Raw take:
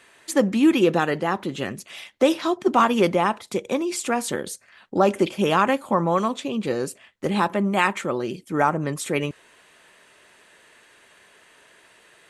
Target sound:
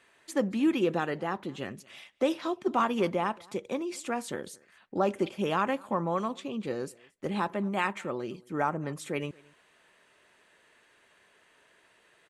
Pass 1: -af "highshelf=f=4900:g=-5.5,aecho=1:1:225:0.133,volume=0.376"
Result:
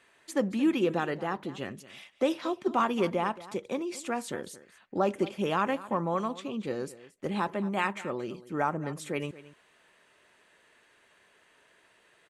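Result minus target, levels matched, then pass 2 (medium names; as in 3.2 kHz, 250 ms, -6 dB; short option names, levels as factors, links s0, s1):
echo-to-direct +8.5 dB
-af "highshelf=f=4900:g=-5.5,aecho=1:1:225:0.0501,volume=0.376"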